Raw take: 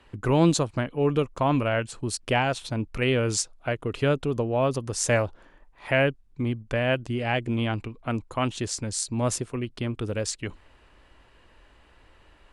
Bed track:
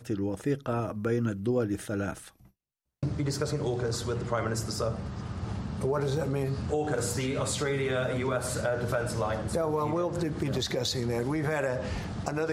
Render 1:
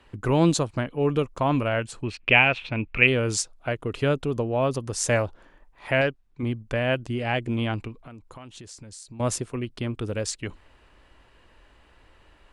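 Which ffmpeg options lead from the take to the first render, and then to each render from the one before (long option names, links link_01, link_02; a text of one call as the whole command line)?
ffmpeg -i in.wav -filter_complex "[0:a]asplit=3[link_01][link_02][link_03];[link_01]afade=type=out:start_time=2.02:duration=0.02[link_04];[link_02]lowpass=frequency=2500:width_type=q:width=6.5,afade=type=in:start_time=2.02:duration=0.02,afade=type=out:start_time=3.06:duration=0.02[link_05];[link_03]afade=type=in:start_time=3.06:duration=0.02[link_06];[link_04][link_05][link_06]amix=inputs=3:normalize=0,asettb=1/sr,asplit=3[link_07][link_08][link_09];[link_07]atrim=end=6.014[link_10];[link_08]atrim=start=6.01:end=6.43,asetpts=PTS-STARTPTS,afade=type=in:duration=0.004:curve=qsin,afade=type=out:start_time=0.416:duration=0.004:curve=qsin,asplit=2[link_11][link_12];[link_12]highpass=frequency=720:poles=1,volume=7dB,asoftclip=type=tanh:threshold=-11dB[link_13];[link_11][link_13]amix=inputs=2:normalize=0,lowpass=frequency=3000:poles=1,volume=-6dB[link_14];[link_09]atrim=start=6.426[link_15];[link_10][link_14]acrossfade=duration=0.004:curve1=hsin:curve2=qsin[link_16];[link_16][link_15]acrossfade=duration=0.004:curve1=qsin:curve2=hsin,asettb=1/sr,asplit=3[link_17][link_18][link_19];[link_17]atrim=end=7.944[link_20];[link_18]atrim=start=7.94:end=9.2,asetpts=PTS-STARTPTS,afade=type=in:duration=0.004:curve=qsin,afade=type=out:start_time=1.256:duration=0.004:curve=qsin,acompressor=threshold=-40dB:ratio=8:attack=3.2:release=140:knee=1:detection=peak[link_21];[link_19]atrim=start=9.196[link_22];[link_20][link_21]acrossfade=duration=0.004:curve1=hsin:curve2=qsin[link_23];[link_23][link_22]acrossfade=duration=0.004:curve1=qsin:curve2=hsin" out.wav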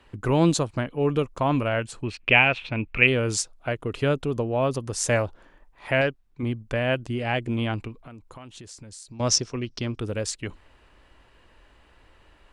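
ffmpeg -i in.wav -filter_complex "[0:a]asettb=1/sr,asplit=3[link_01][link_02][link_03];[link_01]atrim=end=9.114[link_04];[link_02]atrim=start=9.11:end=9.99,asetpts=PTS-STARTPTS,afade=type=in:duration=0.004:curve=qsin,afade=type=out:start_time=0.876:duration=0.004:curve=qsin,lowpass=frequency=5600:width_type=q:width=9.4[link_05];[link_03]atrim=start=9.986[link_06];[link_04][link_05]acrossfade=duration=0.004:curve1=hsin:curve2=qsin[link_07];[link_07][link_06]acrossfade=duration=0.004:curve1=qsin:curve2=hsin" out.wav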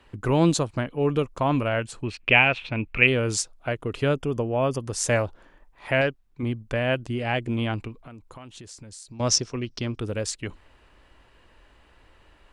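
ffmpeg -i in.wav -filter_complex "[0:a]asettb=1/sr,asplit=3[link_01][link_02][link_03];[link_01]atrim=end=4.154[link_04];[link_02]atrim=start=4.15:end=4.79,asetpts=PTS-STARTPTS,afade=type=in:duration=0.004:curve=qsin,afade=type=out:start_time=0.636:duration=0.004:curve=qsin,asuperstop=centerf=4000:order=8:qfactor=4.4[link_05];[link_03]atrim=start=4.786[link_06];[link_04][link_05]acrossfade=duration=0.004:curve1=hsin:curve2=qsin[link_07];[link_07][link_06]acrossfade=duration=0.004:curve1=qsin:curve2=hsin" out.wav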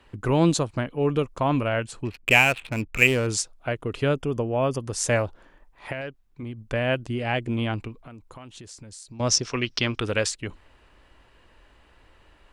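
ffmpeg -i in.wav -filter_complex "[0:a]asettb=1/sr,asplit=3[link_01][link_02][link_03];[link_01]atrim=end=2.054[link_04];[link_02]atrim=start=2.05:end=3.27,asetpts=PTS-STARTPTS,afade=type=in:duration=0.004:curve=qsin,afade=type=out:start_time=1.216:duration=0.004:curve=qsin,adynamicsmooth=sensitivity=7.5:basefreq=730[link_05];[link_03]atrim=start=3.266[link_06];[link_04][link_05]acrossfade=duration=0.004:curve1=hsin:curve2=qsin[link_07];[link_07][link_06]acrossfade=duration=0.004:curve1=qsin:curve2=hsin,asplit=3[link_08][link_09][link_10];[link_08]afade=type=out:start_time=5.91:duration=0.02[link_11];[link_09]acompressor=threshold=-35dB:ratio=2.5:attack=3.2:release=140:knee=1:detection=peak,afade=type=in:start_time=5.91:duration=0.02,afade=type=out:start_time=6.57:duration=0.02[link_12];[link_10]afade=type=in:start_time=6.57:duration=0.02[link_13];[link_11][link_12][link_13]amix=inputs=3:normalize=0,asplit=3[link_14][link_15][link_16];[link_14]afade=type=out:start_time=9.43:duration=0.02[link_17];[link_15]equalizer=frequency=2400:width=0.31:gain=12,afade=type=in:start_time=9.43:duration=0.02,afade=type=out:start_time=10.27:duration=0.02[link_18];[link_16]afade=type=in:start_time=10.27:duration=0.02[link_19];[link_17][link_18][link_19]amix=inputs=3:normalize=0" out.wav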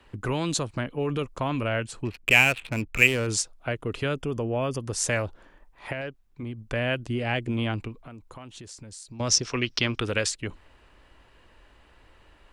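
ffmpeg -i in.wav -filter_complex "[0:a]acrossover=split=670|1100[link_01][link_02][link_03];[link_01]alimiter=limit=-21.5dB:level=0:latency=1[link_04];[link_02]acompressor=threshold=-41dB:ratio=6[link_05];[link_04][link_05][link_03]amix=inputs=3:normalize=0" out.wav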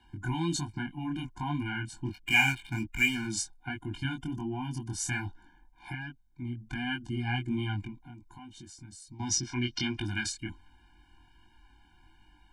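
ffmpeg -i in.wav -af "flanger=delay=19.5:depth=5.3:speed=1.3,afftfilt=real='re*eq(mod(floor(b*sr/1024/350),2),0)':imag='im*eq(mod(floor(b*sr/1024/350),2),0)':win_size=1024:overlap=0.75" out.wav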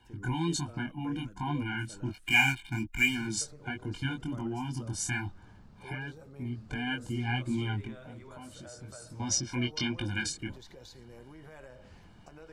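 ffmpeg -i in.wav -i bed.wav -filter_complex "[1:a]volume=-21.5dB[link_01];[0:a][link_01]amix=inputs=2:normalize=0" out.wav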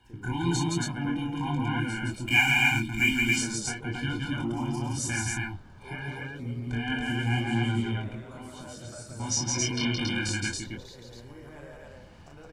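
ffmpeg -i in.wav -af "aecho=1:1:34.99|169.1|277:0.631|0.794|0.891" out.wav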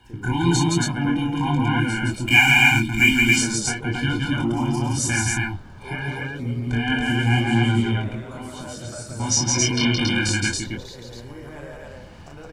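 ffmpeg -i in.wav -af "volume=8dB,alimiter=limit=-3dB:level=0:latency=1" out.wav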